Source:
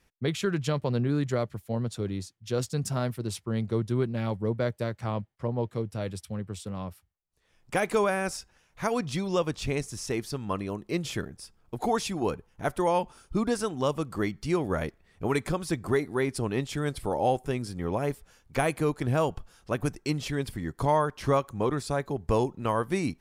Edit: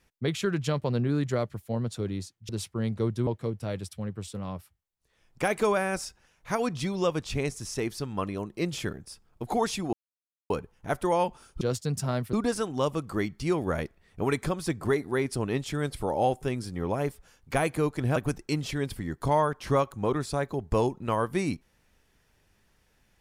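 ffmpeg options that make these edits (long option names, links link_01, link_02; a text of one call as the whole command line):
ffmpeg -i in.wav -filter_complex "[0:a]asplit=7[link_01][link_02][link_03][link_04][link_05][link_06][link_07];[link_01]atrim=end=2.492[link_08];[link_02]atrim=start=3.208:end=3.992[link_09];[link_03]atrim=start=5.588:end=12.25,asetpts=PTS-STARTPTS,afade=type=out:start_time=6.658:duration=0.004:curve=hsin,apad=pad_dur=0.57[link_10];[link_04]atrim=start=12.25:end=13.362,asetpts=PTS-STARTPTS,afade=type=in:duration=0.004:curve=hsin[link_11];[link_05]atrim=start=2.488:end=3.212[link_12];[link_06]atrim=start=13.358:end=19.192[link_13];[link_07]atrim=start=19.728[link_14];[link_08][link_09]acrossfade=duration=0.004:curve1=hsin:curve2=hsin[link_15];[link_10][link_11]concat=n=2:v=0:a=1[link_16];[link_15][link_16]acrossfade=duration=0.004:curve1=hsin:curve2=hsin[link_17];[link_17][link_12]acrossfade=duration=0.004:curve1=hsin:curve2=hsin[link_18];[link_18][link_13]acrossfade=duration=0.004:curve1=hsin:curve2=hsin[link_19];[link_19][link_14]acrossfade=duration=0.004:curve1=hsin:curve2=hsin" out.wav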